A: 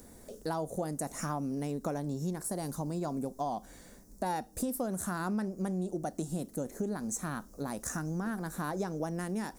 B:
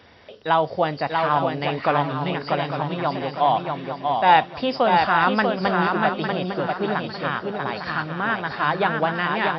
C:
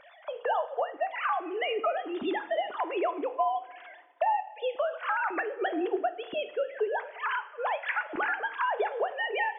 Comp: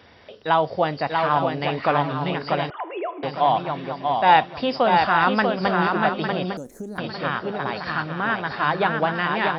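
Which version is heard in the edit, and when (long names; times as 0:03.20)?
B
0:02.70–0:03.23: punch in from C
0:06.57–0:06.98: punch in from A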